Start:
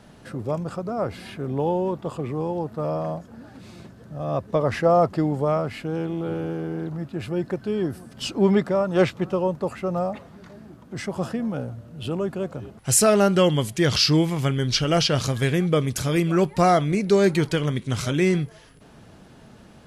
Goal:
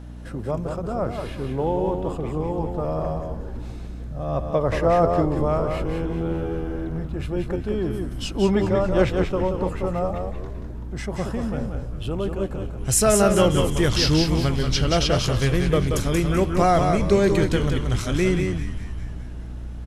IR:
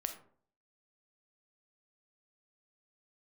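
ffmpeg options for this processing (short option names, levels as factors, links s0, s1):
-filter_complex "[0:a]aecho=1:1:181:0.531,asplit=2[s0][s1];[1:a]atrim=start_sample=2205,lowpass=1900[s2];[s1][s2]afir=irnorm=-1:irlink=0,volume=0.178[s3];[s0][s3]amix=inputs=2:normalize=0,aeval=exprs='val(0)+0.0178*(sin(2*PI*60*n/s)+sin(2*PI*2*60*n/s)/2+sin(2*PI*3*60*n/s)/3+sin(2*PI*4*60*n/s)/4+sin(2*PI*5*60*n/s)/5)':c=same,asplit=2[s4][s5];[s5]asplit=7[s6][s7][s8][s9][s10][s11][s12];[s6]adelay=202,afreqshift=-86,volume=0.251[s13];[s7]adelay=404,afreqshift=-172,volume=0.153[s14];[s8]adelay=606,afreqshift=-258,volume=0.0933[s15];[s9]adelay=808,afreqshift=-344,volume=0.0569[s16];[s10]adelay=1010,afreqshift=-430,volume=0.0347[s17];[s11]adelay=1212,afreqshift=-516,volume=0.0211[s18];[s12]adelay=1414,afreqshift=-602,volume=0.0129[s19];[s13][s14][s15][s16][s17][s18][s19]amix=inputs=7:normalize=0[s20];[s4][s20]amix=inputs=2:normalize=0,asubboost=boost=2:cutoff=97,bandreject=f=4600:w=15,volume=0.841"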